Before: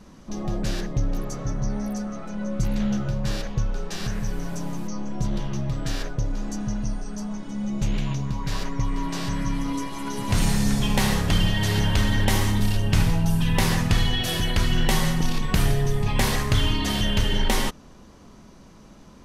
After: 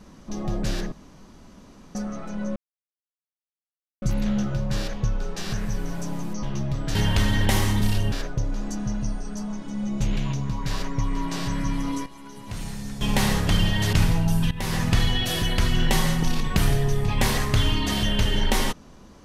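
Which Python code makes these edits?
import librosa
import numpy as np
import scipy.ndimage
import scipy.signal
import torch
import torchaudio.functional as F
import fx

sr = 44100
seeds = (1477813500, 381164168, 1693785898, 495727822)

y = fx.edit(x, sr, fx.room_tone_fill(start_s=0.92, length_s=1.03),
    fx.insert_silence(at_s=2.56, length_s=1.46),
    fx.cut(start_s=4.97, length_s=0.44),
    fx.fade_down_up(start_s=9.63, length_s=1.43, db=-12.0, fade_s=0.24, curve='log'),
    fx.move(start_s=11.74, length_s=1.17, to_s=5.93),
    fx.fade_in_from(start_s=13.49, length_s=0.37, floor_db=-17.5), tone=tone)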